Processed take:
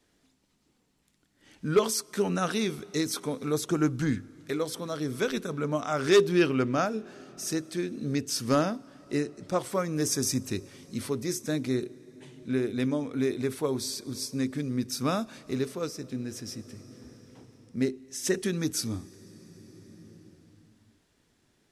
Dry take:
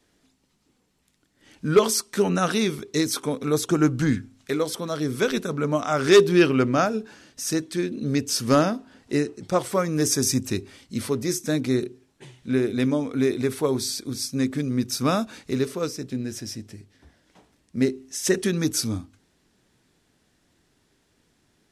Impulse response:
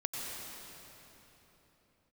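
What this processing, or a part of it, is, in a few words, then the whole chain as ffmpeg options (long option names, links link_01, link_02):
ducked reverb: -filter_complex "[0:a]asplit=3[link_01][link_02][link_03];[1:a]atrim=start_sample=2205[link_04];[link_02][link_04]afir=irnorm=-1:irlink=0[link_05];[link_03]apad=whole_len=957758[link_06];[link_05][link_06]sidechaincompress=threshold=-34dB:ratio=12:attack=16:release=1240,volume=-8.5dB[link_07];[link_01][link_07]amix=inputs=2:normalize=0,volume=-6dB"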